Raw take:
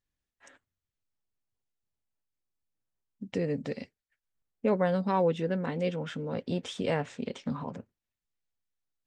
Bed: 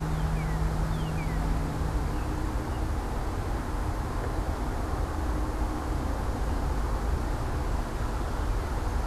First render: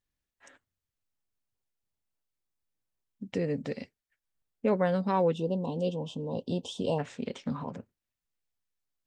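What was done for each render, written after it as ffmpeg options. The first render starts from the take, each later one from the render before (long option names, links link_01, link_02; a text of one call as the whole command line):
ffmpeg -i in.wav -filter_complex "[0:a]asplit=3[link_01][link_02][link_03];[link_01]afade=type=out:start_time=5.33:duration=0.02[link_04];[link_02]asuperstop=centerf=1700:order=12:qfactor=0.98,afade=type=in:start_time=5.33:duration=0.02,afade=type=out:start_time=6.98:duration=0.02[link_05];[link_03]afade=type=in:start_time=6.98:duration=0.02[link_06];[link_04][link_05][link_06]amix=inputs=3:normalize=0" out.wav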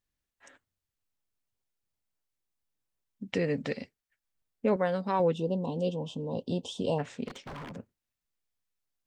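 ffmpeg -i in.wav -filter_complex "[0:a]asettb=1/sr,asplit=3[link_01][link_02][link_03];[link_01]atrim=end=3.284[link_04];[link_02]atrim=start=3.28:end=3.77,asetpts=PTS-STARTPTS,afade=type=in:duration=0.004:curve=qsin,afade=type=out:start_time=0.486:duration=0.004:curve=qsin,equalizer=frequency=2300:width_type=o:width=2.9:gain=7.5[link_05];[link_03]atrim=start=3.766[link_06];[link_04][link_05]acrossfade=duration=0.004:curve1=hsin:curve2=qsin[link_07];[link_07][link_06]acrossfade=duration=0.004:curve1=qsin:curve2=hsin,asettb=1/sr,asplit=3[link_08][link_09][link_10];[link_08]atrim=end=4.764[link_11];[link_09]atrim=start=4.76:end=5.2,asetpts=PTS-STARTPTS,afade=type=in:duration=0.004:curve=qsin,afade=type=out:start_time=0.436:duration=0.004:curve=qsin,lowshelf=frequency=170:gain=-11[link_12];[link_10]atrim=start=5.196[link_13];[link_11][link_12]acrossfade=duration=0.004:curve1=hsin:curve2=qsin[link_14];[link_14][link_13]acrossfade=duration=0.004:curve1=qsin:curve2=hsin,asplit=3[link_15][link_16][link_17];[link_15]afade=type=out:start_time=7.27:duration=0.02[link_18];[link_16]aeval=exprs='0.015*(abs(mod(val(0)/0.015+3,4)-2)-1)':channel_layout=same,afade=type=in:start_time=7.27:duration=0.02,afade=type=out:start_time=7.75:duration=0.02[link_19];[link_17]afade=type=in:start_time=7.75:duration=0.02[link_20];[link_18][link_19][link_20]amix=inputs=3:normalize=0" out.wav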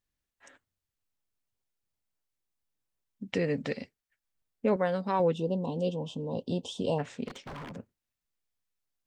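ffmpeg -i in.wav -af anull out.wav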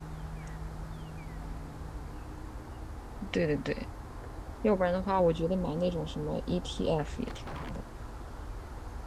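ffmpeg -i in.wav -i bed.wav -filter_complex "[1:a]volume=-12.5dB[link_01];[0:a][link_01]amix=inputs=2:normalize=0" out.wav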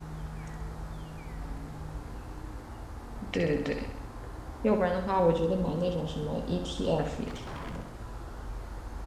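ffmpeg -i in.wav -filter_complex "[0:a]asplit=2[link_01][link_02];[link_02]adelay=18,volume=-11dB[link_03];[link_01][link_03]amix=inputs=2:normalize=0,asplit=2[link_04][link_05];[link_05]aecho=0:1:65|130|195|260|325|390|455:0.422|0.24|0.137|0.0781|0.0445|0.0254|0.0145[link_06];[link_04][link_06]amix=inputs=2:normalize=0" out.wav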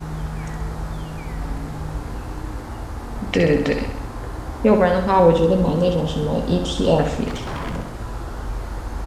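ffmpeg -i in.wav -af "volume=11.5dB,alimiter=limit=-3dB:level=0:latency=1" out.wav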